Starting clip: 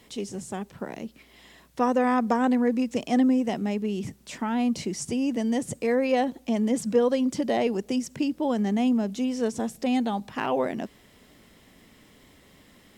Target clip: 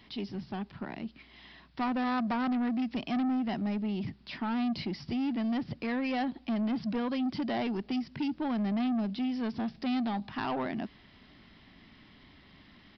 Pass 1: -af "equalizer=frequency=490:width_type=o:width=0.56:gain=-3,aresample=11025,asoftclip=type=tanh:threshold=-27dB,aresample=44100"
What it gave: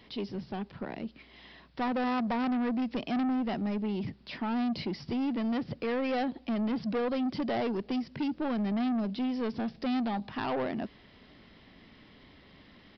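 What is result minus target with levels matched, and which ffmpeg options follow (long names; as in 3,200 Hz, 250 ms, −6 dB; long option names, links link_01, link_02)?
500 Hz band +4.5 dB
-af "equalizer=frequency=490:width_type=o:width=0.56:gain=-12.5,aresample=11025,asoftclip=type=tanh:threshold=-27dB,aresample=44100"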